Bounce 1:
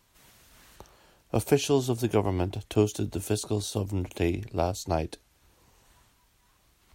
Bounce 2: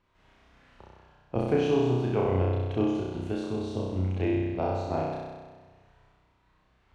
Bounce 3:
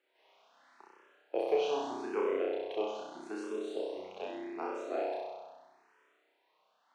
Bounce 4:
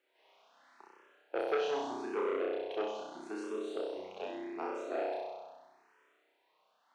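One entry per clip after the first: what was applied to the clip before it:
low-pass filter 2,400 Hz 12 dB per octave; on a send: flutter between parallel walls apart 5.5 metres, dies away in 1.4 s; on the sum: level −5 dB
high-pass filter 360 Hz 24 dB per octave; frequency shifter mixed with the dry sound +0.8 Hz
saturating transformer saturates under 1,200 Hz

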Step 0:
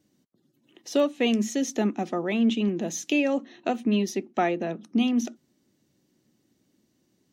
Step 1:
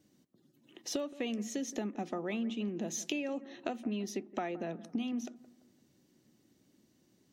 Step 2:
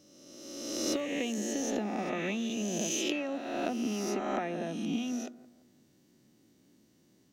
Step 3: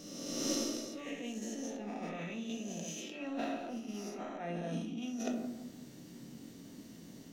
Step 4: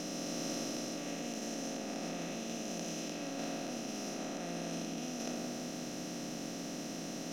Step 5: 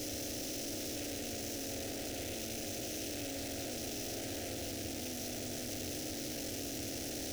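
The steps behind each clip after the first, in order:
downward compressor 10 to 1, threshold −33 dBFS, peak gain reduction 16 dB; bucket-brigade delay 170 ms, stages 2,048, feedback 42%, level −17.5 dB
peak hold with a rise ahead of every peak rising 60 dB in 1.60 s
compressor whose output falls as the input rises −44 dBFS, ratio −1; rectangular room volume 550 cubic metres, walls furnished, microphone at 1.7 metres; level +1 dB
compressor on every frequency bin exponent 0.2; level −8.5 dB
sign of each sample alone; parametric band 100 Hz +13.5 dB 1.3 octaves; phaser with its sweep stopped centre 440 Hz, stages 4; level +1 dB

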